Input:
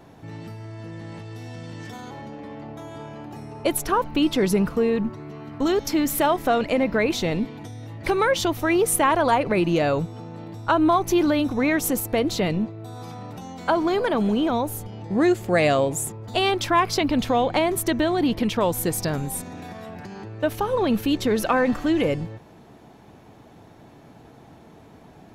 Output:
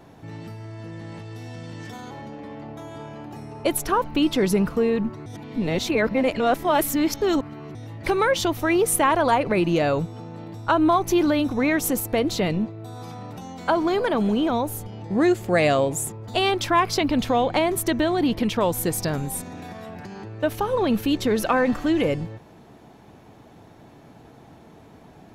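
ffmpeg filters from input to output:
-filter_complex "[0:a]asplit=3[a][b][c];[a]atrim=end=5.262[d];[b]atrim=start=5.258:end=7.752,asetpts=PTS-STARTPTS,areverse[e];[c]atrim=start=7.748[f];[d][e]acrossfade=d=0.004:c1=hsin:c2=hsin[g];[g][f]acrossfade=d=0.004:c1=hsin:c2=hsin"

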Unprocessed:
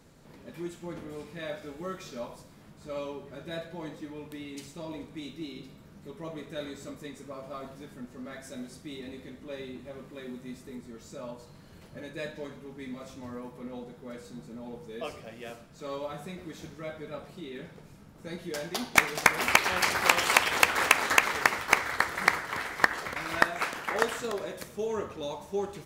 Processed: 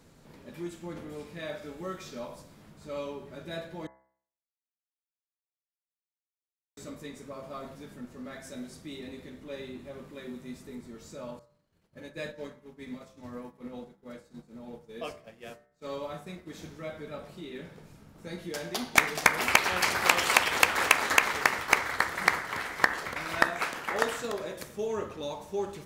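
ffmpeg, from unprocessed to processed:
-filter_complex "[0:a]asettb=1/sr,asplit=3[a][b][c];[a]atrim=end=11.394[d];[b]atrim=start=11.39:end=16.51,asetpts=PTS-STARTPTS,afade=t=in:d=0.004:c=qsin,afade=t=out:st=5.116:d=0.004:c=qsin,agate=range=-33dB:threshold=-39dB:ratio=3:release=100:detection=peak[e];[c]atrim=start=16.506[f];[d][e]acrossfade=d=0.004:c1=hsin:c2=qsin[g];[g][f]acrossfade=d=0.004:c1=qsin:c2=hsin,asplit=3[h][i][j];[h]atrim=end=3.87,asetpts=PTS-STARTPTS,afade=t=out:st=3.866:d=0.004:c=hsin[k];[i]atrim=start=3.87:end=6.77,asetpts=PTS-STARTPTS,volume=0[l];[j]atrim=start=6.77,asetpts=PTS-STARTPTS,afade=t=in:d=0.004:c=hsin[m];[k][l][m]concat=n=3:v=0:a=1,bandreject=f=65.45:t=h:w=4,bandreject=f=130.9:t=h:w=4,bandreject=f=196.35:t=h:w=4,bandreject=f=261.8:t=h:w=4,bandreject=f=327.25:t=h:w=4,bandreject=f=392.7:t=h:w=4,bandreject=f=458.15:t=h:w=4,bandreject=f=523.6:t=h:w=4,bandreject=f=589.05:t=h:w=4,bandreject=f=654.5:t=h:w=4,bandreject=f=719.95:t=h:w=4,bandreject=f=785.4:t=h:w=4,bandreject=f=850.85:t=h:w=4,bandreject=f=916.3:t=h:w=4,bandreject=f=981.75:t=h:w=4,bandreject=f=1.0472k:t=h:w=4,bandreject=f=1.11265k:t=h:w=4,bandreject=f=1.1781k:t=h:w=4,bandreject=f=1.24355k:t=h:w=4,bandreject=f=1.309k:t=h:w=4,bandreject=f=1.37445k:t=h:w=4,bandreject=f=1.4399k:t=h:w=4,bandreject=f=1.50535k:t=h:w=4,bandreject=f=1.5708k:t=h:w=4,bandreject=f=1.63625k:t=h:w=4,bandreject=f=1.7017k:t=h:w=4,bandreject=f=1.76715k:t=h:w=4,bandreject=f=1.8326k:t=h:w=4,bandreject=f=1.89805k:t=h:w=4,bandreject=f=1.9635k:t=h:w=4,bandreject=f=2.02895k:t=h:w=4,bandreject=f=2.0944k:t=h:w=4,bandreject=f=2.15985k:t=h:w=4"

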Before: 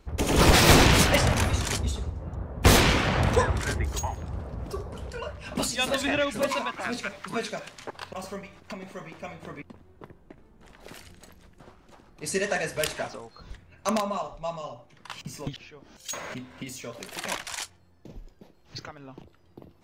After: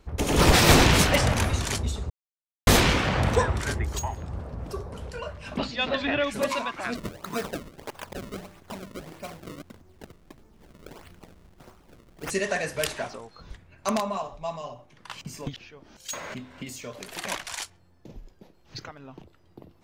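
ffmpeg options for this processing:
-filter_complex "[0:a]asettb=1/sr,asplit=3[a][b][c];[a]atrim=end=5.574[d];[b]atrim=start=5.57:end=6.24,asetpts=PTS-STARTPTS,afade=t=in:d=0.004:c=qsin,afade=t=out:st=0.666:d=0.004:c=qsin,lowpass=f=4.1k:w=0.5412,lowpass=f=4.1k:w=1.3066[e];[c]atrim=start=6.236[f];[d][e]acrossfade=d=0.004:c1=hsin:c2=qsin[g];[g][f]acrossfade=d=0.004:c1=qsin:c2=hsin,asplit=3[h][i][j];[h]afade=t=out:st=6.94:d=0.02[k];[i]acrusher=samples=31:mix=1:aa=0.000001:lfo=1:lforange=49.6:lforate=1.6,afade=t=in:st=6.94:d=0.02,afade=t=out:st=12.29:d=0.02[l];[j]afade=t=in:st=12.29:d=0.02[m];[k][l][m]amix=inputs=3:normalize=0,asplit=3[n][o][p];[n]atrim=end=2.1,asetpts=PTS-STARTPTS,afade=t=out:st=2.096:d=0.004:c=hsin[q];[o]atrim=start=2.1:end=2.67,asetpts=PTS-STARTPTS,volume=0[r];[p]atrim=start=2.67,asetpts=PTS-STARTPTS,afade=t=in:d=0.004:c=hsin[s];[q][r][s]concat=n=3:v=0:a=1"

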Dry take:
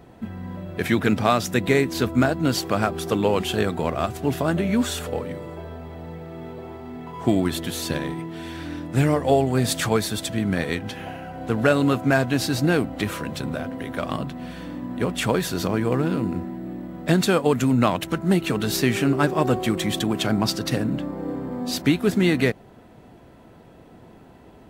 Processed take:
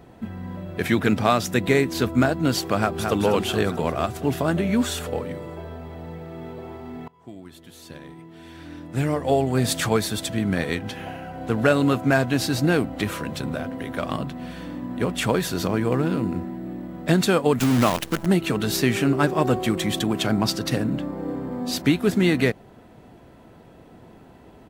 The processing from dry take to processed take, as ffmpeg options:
-filter_complex "[0:a]asplit=2[a][b];[b]afade=t=in:st=2.77:d=0.01,afade=t=out:st=3.18:d=0.01,aecho=0:1:220|440|660|880|1100|1320|1540|1760:0.562341|0.337405|0.202443|0.121466|0.0728794|0.0437277|0.0262366|0.015742[c];[a][c]amix=inputs=2:normalize=0,asettb=1/sr,asplit=3[d][e][f];[d]atrim=end=17.594[g];[e]atrim=start=17.59:end=18.26,asetpts=PTS-STARTPTS,afade=t=in:d=0.004:c=qsin,afade=t=out:st=0.666:d=0.004:c=qsin,acrusher=bits=5:dc=4:mix=0:aa=0.000001[h];[f]atrim=start=18.256[i];[g][h]acrossfade=d=0.004:c1=hsin:c2=qsin[j];[j][i]acrossfade=d=0.004:c1=qsin:c2=hsin,asplit=2[k][l];[k]atrim=end=7.08,asetpts=PTS-STARTPTS,afade=t=out:st=7.076:d=0.004:c=hsin:silence=0.0794328[m];[l]atrim=start=7.08,asetpts=PTS-STARTPTS,afade=t=in:d=2.55:c=qua:silence=0.0794328[n];[m][n]concat=n=2:v=0:a=1"

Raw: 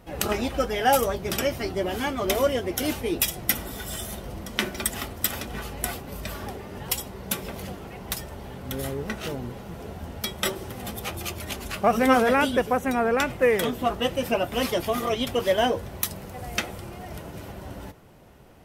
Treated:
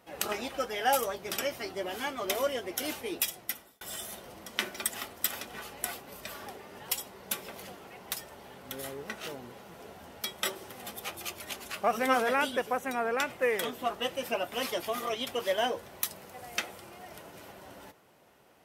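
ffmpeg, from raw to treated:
-filter_complex "[0:a]asplit=2[a][b];[a]atrim=end=3.81,asetpts=PTS-STARTPTS,afade=t=out:st=3.13:d=0.68[c];[b]atrim=start=3.81,asetpts=PTS-STARTPTS,afade=t=in:d=0.004:c=hsin[d];[c][d]concat=n=2:v=0:a=1,highpass=f=570:p=1,volume=-4.5dB"

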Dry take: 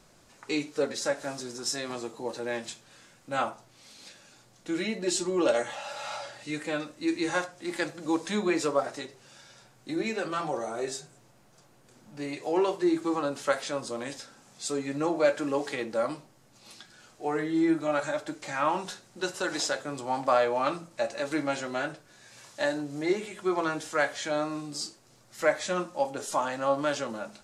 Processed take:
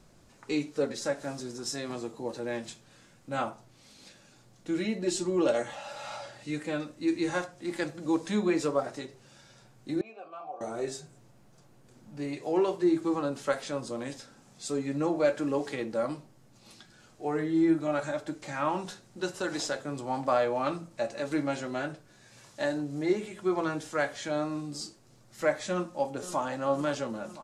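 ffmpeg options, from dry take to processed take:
-filter_complex "[0:a]asettb=1/sr,asplit=3[a][b][c];[a]atrim=end=10.014[d];[b]atrim=start=10.01:end=10.61,asetpts=PTS-STARTPTS,afade=t=in:d=0.004:c=qsin,afade=t=out:st=0.596:d=0.004:c=qsin,asplit=3[e][f][g];[e]bandpass=f=730:t=q:w=8,volume=0dB[h];[f]bandpass=f=1.09k:t=q:w=8,volume=-6dB[i];[g]bandpass=f=2.44k:t=q:w=8,volume=-9dB[j];[h][i][j]amix=inputs=3:normalize=0[k];[c]atrim=start=10.606[l];[d][k]acrossfade=d=0.004:c1=hsin:c2=qsin[m];[m][l]acrossfade=d=0.004:c1=qsin:c2=hsin,asplit=2[n][o];[o]afade=t=in:st=25.71:d=0.01,afade=t=out:st=26.44:d=0.01,aecho=0:1:510|1020|1530|2040|2550|3060|3570|4080|4590|5100|5610:0.177828|0.133371|0.100028|0.0750212|0.0562659|0.0421994|0.0316496|0.0237372|0.0178029|0.0133522|0.0100141[p];[n][p]amix=inputs=2:normalize=0,lowshelf=f=370:g=9,volume=-4.5dB"

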